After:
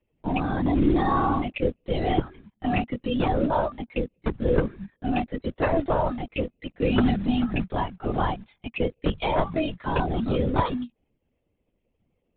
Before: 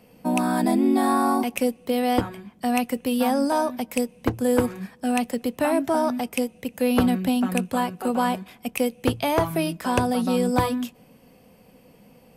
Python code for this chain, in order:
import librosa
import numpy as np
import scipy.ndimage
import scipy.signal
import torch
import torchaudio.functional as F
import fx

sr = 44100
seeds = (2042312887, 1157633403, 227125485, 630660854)

p1 = fx.bin_expand(x, sr, power=1.5)
p2 = fx.quant_companded(p1, sr, bits=4)
p3 = p1 + (p2 * 10.0 ** (-9.0 / 20.0))
p4 = fx.lpc_vocoder(p3, sr, seeds[0], excitation='whisper', order=16)
y = p4 * 10.0 ** (-2.0 / 20.0)